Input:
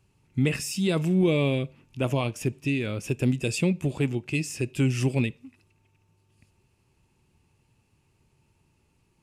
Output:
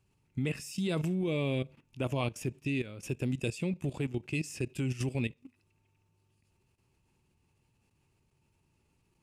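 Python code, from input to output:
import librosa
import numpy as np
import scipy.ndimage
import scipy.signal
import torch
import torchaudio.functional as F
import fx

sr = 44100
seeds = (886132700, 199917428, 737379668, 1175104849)

y = fx.level_steps(x, sr, step_db=14)
y = y * 10.0 ** (-2.5 / 20.0)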